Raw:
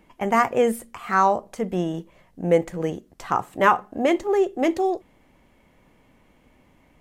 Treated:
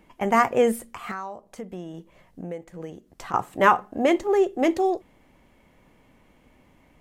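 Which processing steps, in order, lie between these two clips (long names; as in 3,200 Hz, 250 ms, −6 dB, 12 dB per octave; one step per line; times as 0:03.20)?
0:01.11–0:03.34: downward compressor 4 to 1, threshold −35 dBFS, peak gain reduction 18.5 dB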